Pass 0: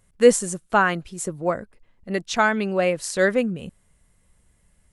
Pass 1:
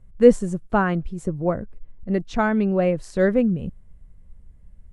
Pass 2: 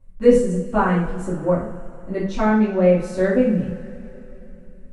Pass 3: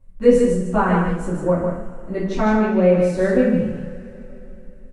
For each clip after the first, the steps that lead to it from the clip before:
tilt -4 dB/oct; gain -3.5 dB
two-slope reverb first 0.46 s, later 3.4 s, from -20 dB, DRR -9.5 dB; gain -8 dB
echo 0.151 s -4.5 dB

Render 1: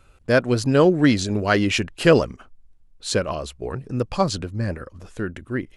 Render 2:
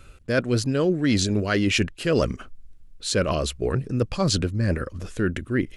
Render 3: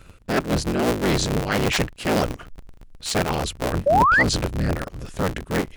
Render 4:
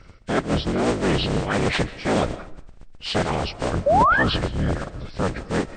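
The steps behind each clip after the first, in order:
bell 850 Hz -8 dB 0.9 oct; reverse; compressor 8:1, threshold -26 dBFS, peak gain reduction 15.5 dB; reverse; gain +7.5 dB
cycle switcher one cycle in 3, inverted; painted sound rise, 3.86–4.23, 530–2100 Hz -16 dBFS
nonlinear frequency compression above 1500 Hz 1.5:1; on a send at -16 dB: reverb RT60 0.60 s, pre-delay 0.1 s

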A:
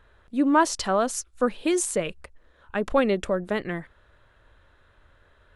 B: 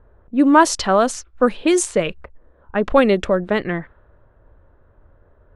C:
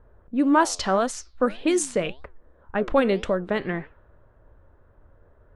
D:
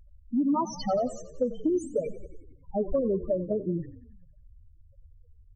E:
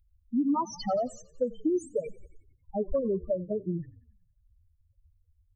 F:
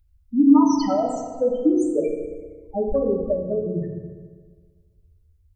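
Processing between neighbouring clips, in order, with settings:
low-pass opened by the level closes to 710 Hz, open at -18.5 dBFS; gain +7.5 dB
in parallel at 0 dB: compressor, threshold -23 dBFS, peak gain reduction 15 dB; on the sum: flange 1.8 Hz, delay 6 ms, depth 6.9 ms, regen +85%; gain -4 dB
loudest bins only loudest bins 4; compressor, threshold -25 dBFS, peak gain reduction 9 dB; frequency-shifting echo 91 ms, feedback 63%, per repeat -32 Hz, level -16 dB; gain +2 dB
per-bin expansion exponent 1.5
FDN reverb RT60 1.6 s, low-frequency decay 1×, high-frequency decay 0.5×, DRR 0 dB; gain +4.5 dB

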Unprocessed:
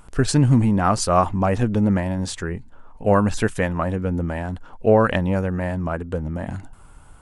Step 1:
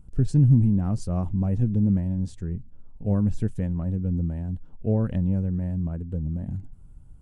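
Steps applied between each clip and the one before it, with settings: EQ curve 160 Hz 0 dB, 1200 Hz -26 dB, 7000 Hz -19 dB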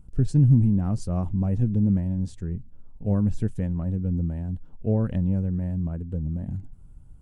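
attack slew limiter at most 560 dB/s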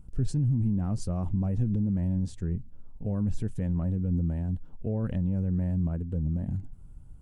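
limiter -20 dBFS, peak gain reduction 11 dB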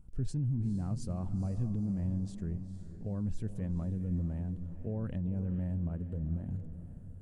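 diffused feedback echo 0.468 s, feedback 43%, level -11 dB; gain -6.5 dB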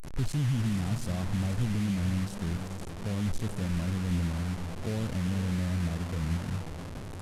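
delta modulation 64 kbps, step -37.5 dBFS; gain +4 dB

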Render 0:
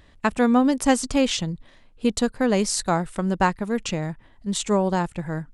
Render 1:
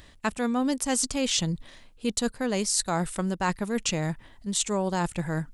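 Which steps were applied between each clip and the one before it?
high shelf 3600 Hz +10.5 dB; reverse; compressor, threshold -25 dBFS, peak gain reduction 13 dB; reverse; gain +1.5 dB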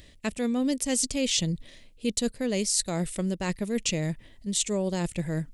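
band shelf 1100 Hz -10.5 dB 1.3 oct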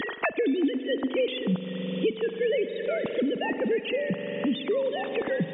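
sine-wave speech; spring tank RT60 3.7 s, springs 43 ms, chirp 40 ms, DRR 9 dB; three-band squash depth 100%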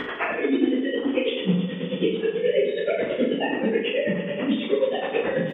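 phase scrambler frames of 0.1 s; tremolo 9.3 Hz, depth 84%; on a send: reverse bouncing-ball echo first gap 40 ms, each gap 1.25×, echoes 5; on the sum: gain +5.5 dB

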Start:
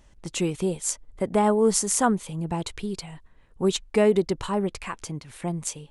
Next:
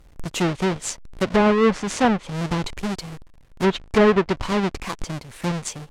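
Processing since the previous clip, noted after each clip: half-waves squared off; treble ducked by the level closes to 2300 Hz, closed at -14.5 dBFS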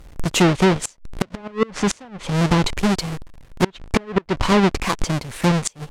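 compressor 12:1, threshold -18 dBFS, peak gain reduction 7.5 dB; flipped gate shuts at -15 dBFS, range -27 dB; gain +8 dB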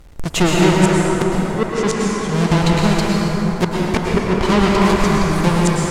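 plate-style reverb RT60 4.4 s, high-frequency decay 0.45×, pre-delay 95 ms, DRR -4 dB; gain -1 dB

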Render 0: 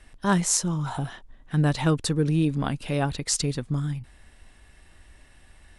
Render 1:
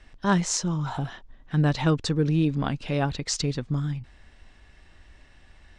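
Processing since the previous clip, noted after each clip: LPF 6600 Hz 24 dB/oct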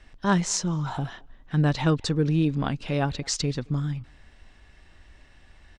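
speakerphone echo 0.22 s, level -25 dB

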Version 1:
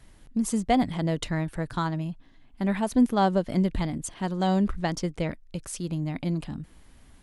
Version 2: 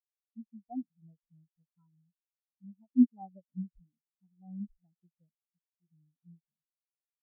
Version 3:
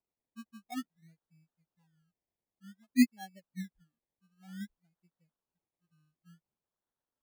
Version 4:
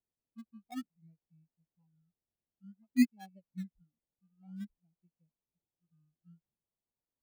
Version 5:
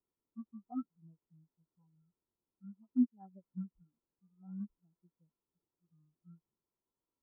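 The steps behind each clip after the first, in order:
spectral expander 4:1; gain -2.5 dB
HPF 170 Hz 6 dB/oct; decimation with a swept rate 25×, swing 60% 0.54 Hz
Wiener smoothing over 25 samples; tone controls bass +5 dB, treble -2 dB; gain -4 dB
compressor 1.5:1, threshold -43 dBFS, peak gain reduction 8.5 dB; rippled Chebyshev low-pass 1400 Hz, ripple 9 dB; gain +8.5 dB

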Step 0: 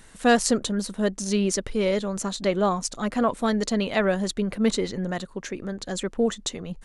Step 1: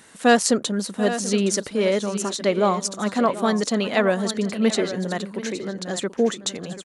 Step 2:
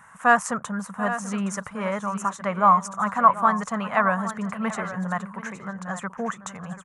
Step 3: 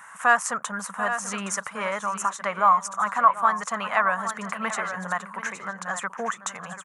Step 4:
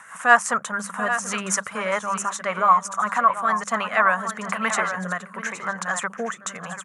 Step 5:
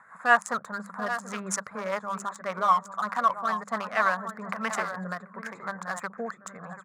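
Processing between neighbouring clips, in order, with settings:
HPF 170 Hz 12 dB/oct; on a send: tapped delay 0.734/0.817 s -15.5/-12 dB; on the sum: gain +3 dB
EQ curve 180 Hz 0 dB, 330 Hz -22 dB, 1100 Hz +11 dB, 2600 Hz -8 dB, 4300 Hz -24 dB, 6500 Hz -9 dB
HPF 1100 Hz 6 dB/oct; in parallel at +3 dB: compressor, threshold -34 dBFS, peak gain reduction 19.5 dB
notches 50/100/150/200 Hz; rotary speaker horn 5 Hz, later 0.9 Hz, at 3.53; gain +6.5 dB
Wiener smoothing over 15 samples; gain -5 dB

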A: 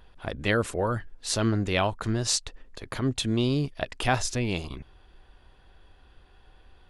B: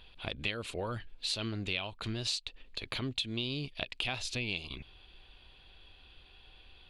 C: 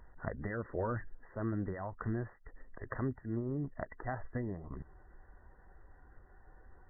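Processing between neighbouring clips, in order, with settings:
band shelf 3200 Hz +13.5 dB 1.2 oct; compressor 4:1, threshold -29 dBFS, peak gain reduction 15 dB; gain -4.5 dB
bin magnitudes rounded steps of 15 dB; brick-wall FIR low-pass 2000 Hz; gain +2 dB

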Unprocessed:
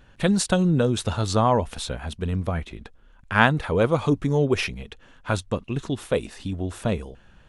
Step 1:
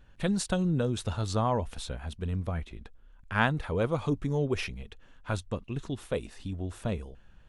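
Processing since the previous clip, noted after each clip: low shelf 73 Hz +9 dB; gain -8.5 dB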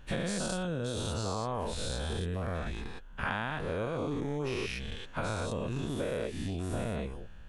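spectral dilation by 0.24 s; compressor 10:1, threshold -30 dBFS, peak gain reduction 15 dB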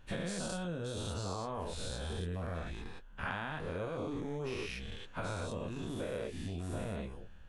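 flange 0.99 Hz, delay 9.6 ms, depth 3.1 ms, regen -45%; gain -1 dB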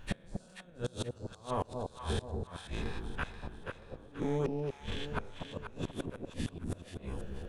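flipped gate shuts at -29 dBFS, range -28 dB; echo with dull and thin repeats by turns 0.241 s, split 830 Hz, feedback 63%, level -3.5 dB; gain +7 dB

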